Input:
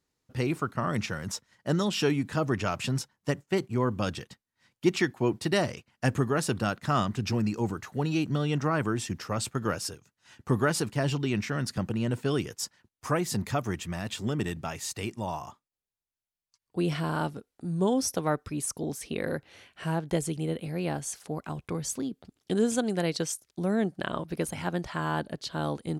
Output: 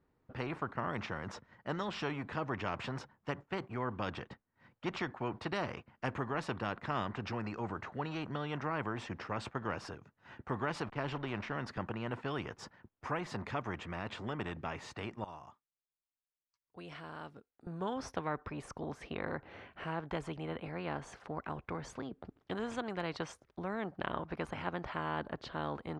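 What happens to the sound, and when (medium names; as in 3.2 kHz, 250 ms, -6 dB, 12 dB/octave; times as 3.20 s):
10.86–11.52 s: hysteresis with a dead band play -41.5 dBFS
15.24–17.67 s: pre-emphasis filter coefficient 0.9
whole clip: low-pass 1.4 kHz 12 dB/octave; dynamic bell 1 kHz, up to +6 dB, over -47 dBFS, Q 2; spectrum-flattening compressor 2:1; trim -7 dB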